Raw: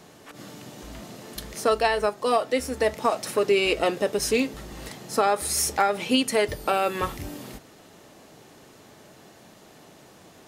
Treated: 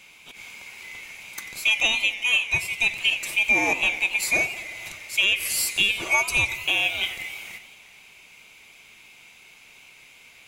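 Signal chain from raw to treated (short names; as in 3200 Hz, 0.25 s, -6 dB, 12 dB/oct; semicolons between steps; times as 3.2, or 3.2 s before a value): band-swap scrambler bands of 2000 Hz; warbling echo 88 ms, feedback 73%, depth 172 cents, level -15 dB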